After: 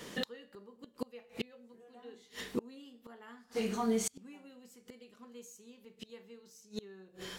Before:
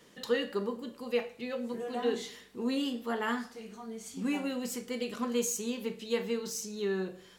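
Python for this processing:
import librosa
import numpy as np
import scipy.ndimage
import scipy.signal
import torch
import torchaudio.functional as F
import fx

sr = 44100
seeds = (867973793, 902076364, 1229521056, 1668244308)

y = fx.gate_flip(x, sr, shuts_db=-32.0, range_db=-32)
y = F.gain(torch.from_numpy(y), 11.5).numpy()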